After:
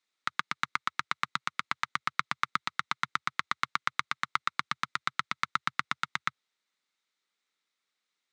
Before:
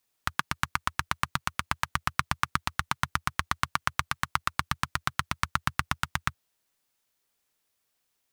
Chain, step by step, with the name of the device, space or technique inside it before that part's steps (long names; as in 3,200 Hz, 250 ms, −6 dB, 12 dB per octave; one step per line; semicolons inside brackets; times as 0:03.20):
television speaker (loudspeaker in its box 170–7,800 Hz, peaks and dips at 670 Hz −4 dB, 1,300 Hz +7 dB, 2,100 Hz +9 dB, 3,800 Hz +9 dB)
level −7 dB